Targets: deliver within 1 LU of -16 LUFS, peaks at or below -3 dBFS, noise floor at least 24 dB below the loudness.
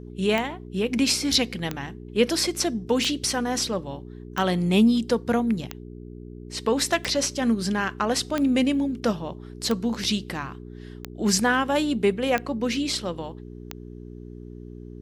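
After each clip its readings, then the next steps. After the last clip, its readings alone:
clicks found 11; hum 60 Hz; highest harmonic 420 Hz; hum level -38 dBFS; loudness -24.5 LUFS; peak level -7.0 dBFS; loudness target -16.0 LUFS
-> de-click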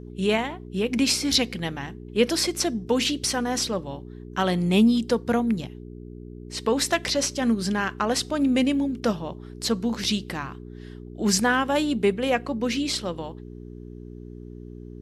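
clicks found 0; hum 60 Hz; highest harmonic 420 Hz; hum level -38 dBFS
-> de-hum 60 Hz, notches 7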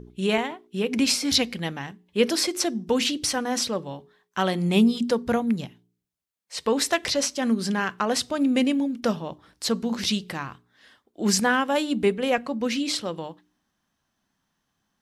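hum not found; loudness -24.5 LUFS; peak level -7.0 dBFS; loudness target -16.0 LUFS
-> trim +8.5 dB; peak limiter -3 dBFS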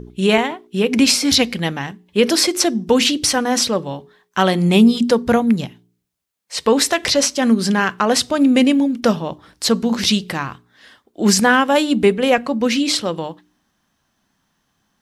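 loudness -16.5 LUFS; peak level -3.0 dBFS; noise floor -69 dBFS

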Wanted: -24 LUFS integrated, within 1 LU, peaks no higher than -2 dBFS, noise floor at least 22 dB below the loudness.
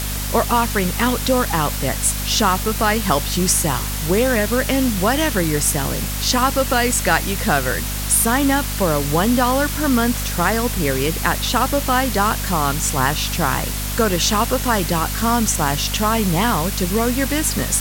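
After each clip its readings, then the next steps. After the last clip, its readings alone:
hum 50 Hz; highest harmonic 250 Hz; hum level -23 dBFS; noise floor -24 dBFS; noise floor target -40 dBFS; loudness -18.0 LUFS; peak level -2.5 dBFS; loudness target -24.0 LUFS
-> hum notches 50/100/150/200/250 Hz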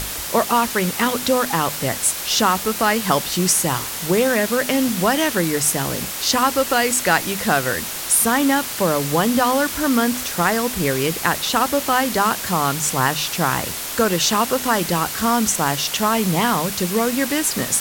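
hum not found; noise floor -28 dBFS; noise floor target -41 dBFS
-> noise reduction 13 dB, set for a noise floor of -28 dBFS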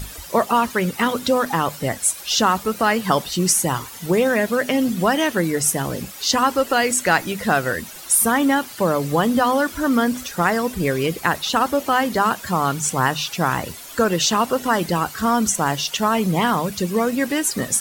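noise floor -37 dBFS; noise floor target -42 dBFS
-> noise reduction 6 dB, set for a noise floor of -37 dBFS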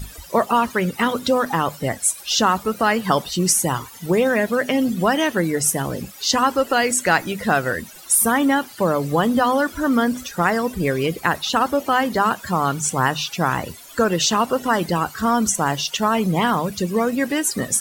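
noise floor -41 dBFS; noise floor target -42 dBFS
-> noise reduction 6 dB, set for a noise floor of -41 dBFS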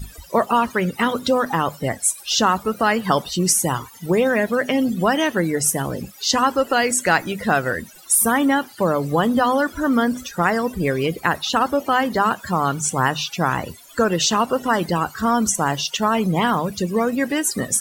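noise floor -44 dBFS; loudness -20.0 LUFS; peak level -3.5 dBFS; loudness target -24.0 LUFS
-> trim -4 dB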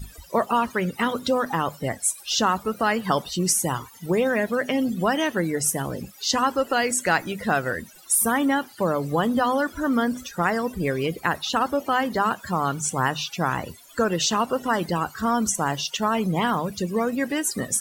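loudness -24.0 LUFS; peak level -7.5 dBFS; noise floor -48 dBFS

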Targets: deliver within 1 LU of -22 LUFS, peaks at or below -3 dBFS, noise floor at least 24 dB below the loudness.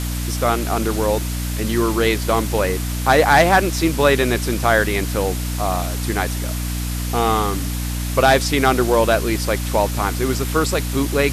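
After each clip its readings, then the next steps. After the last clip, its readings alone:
hum 60 Hz; highest harmonic 300 Hz; hum level -21 dBFS; noise floor -24 dBFS; noise floor target -43 dBFS; loudness -19.0 LUFS; peak level -2.0 dBFS; loudness target -22.0 LUFS
-> de-hum 60 Hz, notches 5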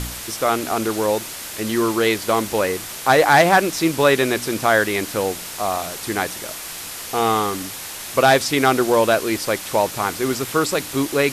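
hum not found; noise floor -33 dBFS; noise floor target -44 dBFS
-> noise reduction 11 dB, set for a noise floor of -33 dBFS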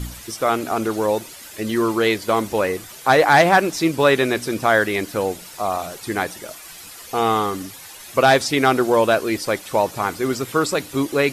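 noise floor -40 dBFS; noise floor target -44 dBFS
-> noise reduction 6 dB, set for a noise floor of -40 dBFS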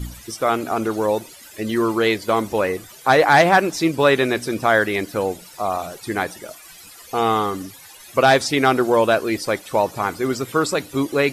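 noise floor -43 dBFS; noise floor target -44 dBFS
-> noise reduction 6 dB, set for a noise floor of -43 dBFS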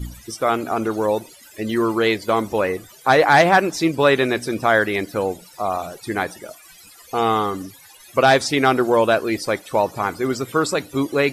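noise floor -46 dBFS; loudness -19.5 LUFS; peak level -3.0 dBFS; loudness target -22.0 LUFS
-> trim -2.5 dB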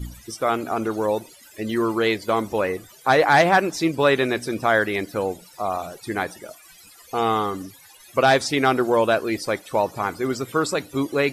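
loudness -22.0 LUFS; peak level -5.5 dBFS; noise floor -49 dBFS

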